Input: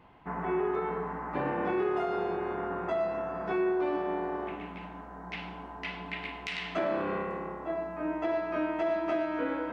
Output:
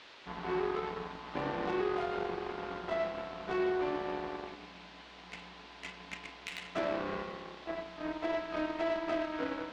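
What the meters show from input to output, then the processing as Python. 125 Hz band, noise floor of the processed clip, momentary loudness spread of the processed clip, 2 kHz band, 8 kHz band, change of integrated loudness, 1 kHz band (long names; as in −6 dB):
−5.0 dB, −53 dBFS, 14 LU, −3.0 dB, can't be measured, −4.0 dB, −4.5 dB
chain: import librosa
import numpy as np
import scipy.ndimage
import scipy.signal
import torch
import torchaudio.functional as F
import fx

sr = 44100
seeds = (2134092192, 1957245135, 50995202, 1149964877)

y = fx.cheby_harmonics(x, sr, harmonics=(7,), levels_db=(-20,), full_scale_db=-19.0)
y = fx.dmg_noise_band(y, sr, seeds[0], low_hz=270.0, high_hz=4000.0, level_db=-51.0)
y = F.gain(torch.from_numpy(y), -3.5).numpy()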